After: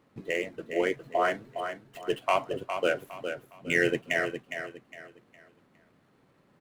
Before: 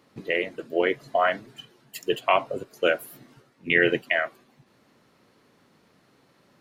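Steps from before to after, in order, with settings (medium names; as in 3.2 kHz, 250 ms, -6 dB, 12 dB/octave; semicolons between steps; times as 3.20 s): median filter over 9 samples; bass shelf 130 Hz +5.5 dB; feedback delay 410 ms, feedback 31%, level -8 dB; trim -4.5 dB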